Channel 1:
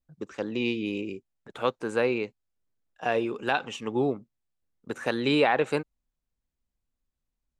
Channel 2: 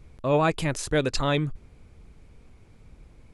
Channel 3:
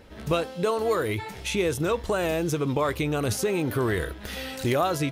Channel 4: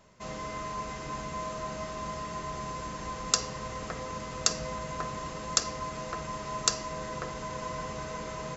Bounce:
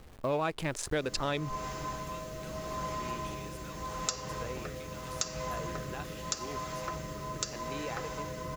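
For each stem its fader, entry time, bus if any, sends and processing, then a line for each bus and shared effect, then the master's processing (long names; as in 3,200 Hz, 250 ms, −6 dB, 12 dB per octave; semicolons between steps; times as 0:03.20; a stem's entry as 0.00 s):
−18.0 dB, 2.45 s, no send, no processing
+3.0 dB, 0.00 s, no send, adaptive Wiener filter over 15 samples; low-shelf EQ 290 Hz −8 dB
−10.5 dB, 1.80 s, no send, high-pass filter 1,300 Hz; downward compressor, threshold −40 dBFS, peak gain reduction 12.5 dB
+2.0 dB, 0.75 s, no send, rotating-speaker cabinet horn 0.8 Hz; notch comb filter 230 Hz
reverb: not used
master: bit reduction 9 bits; downward compressor 3 to 1, threshold −31 dBFS, peak gain reduction 11 dB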